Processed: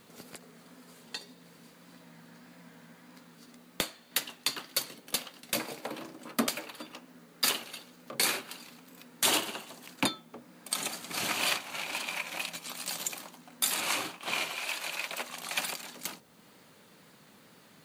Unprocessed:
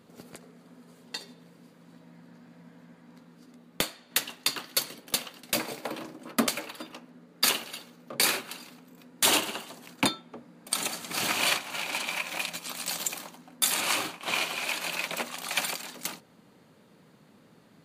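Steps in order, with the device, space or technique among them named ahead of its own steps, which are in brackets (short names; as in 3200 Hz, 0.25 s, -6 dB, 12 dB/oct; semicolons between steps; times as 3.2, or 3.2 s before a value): 14.5–15.3 bell 160 Hz -8 dB 2.4 oct; noise-reduction cassette on a plain deck (mismatched tape noise reduction encoder only; wow and flutter; white noise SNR 31 dB); gain -3.5 dB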